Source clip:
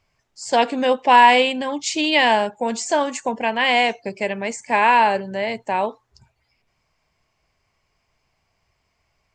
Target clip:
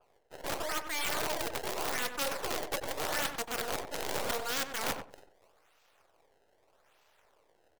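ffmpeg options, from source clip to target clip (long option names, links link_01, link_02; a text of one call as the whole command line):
ffmpeg -i in.wav -filter_complex "[0:a]acrusher=samples=26:mix=1:aa=0.000001:lfo=1:lforange=41.6:lforate=0.68,acontrast=30,aeval=exprs='abs(val(0))':channel_layout=same,areverse,acompressor=threshold=-27dB:ratio=16,areverse,lowshelf=frequency=280:width_type=q:width=1.5:gain=-11.5,asetrate=52920,aresample=44100,aeval=exprs='(mod(20*val(0)+1,2)-1)/20':channel_layout=same,asplit=2[link_01][link_02];[link_02]adelay=94,lowpass=frequency=1400:poles=1,volume=-6dB,asplit=2[link_03][link_04];[link_04]adelay=94,lowpass=frequency=1400:poles=1,volume=0.19,asplit=2[link_05][link_06];[link_06]adelay=94,lowpass=frequency=1400:poles=1,volume=0.19[link_07];[link_03][link_05][link_07]amix=inputs=3:normalize=0[link_08];[link_01][link_08]amix=inputs=2:normalize=0,adynamicequalizer=threshold=0.00316:dfrequency=3300:dqfactor=0.7:tfrequency=3300:tqfactor=0.7:attack=5:release=100:ratio=0.375:range=2:mode=boostabove:tftype=highshelf" out.wav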